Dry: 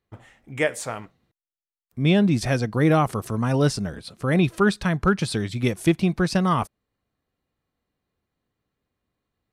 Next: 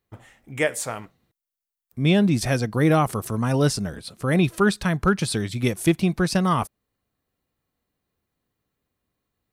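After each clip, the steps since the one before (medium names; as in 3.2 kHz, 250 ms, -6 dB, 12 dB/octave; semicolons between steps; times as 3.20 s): treble shelf 9.4 kHz +11 dB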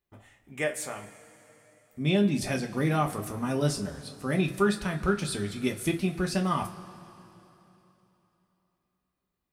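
two-slope reverb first 0.2 s, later 3.3 s, from -22 dB, DRR 1 dB; trim -8.5 dB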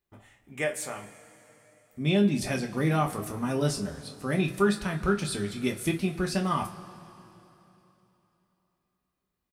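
doubling 25 ms -13 dB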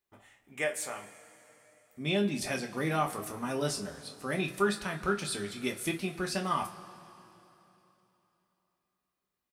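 bass shelf 250 Hz -11 dB; trim -1 dB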